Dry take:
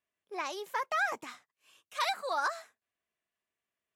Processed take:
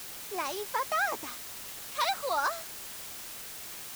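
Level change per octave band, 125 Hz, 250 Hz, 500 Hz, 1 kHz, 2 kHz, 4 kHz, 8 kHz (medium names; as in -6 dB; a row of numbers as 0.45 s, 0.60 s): no reading, +4.0 dB, +3.0 dB, +2.5 dB, +0.5 dB, +4.0 dB, +11.0 dB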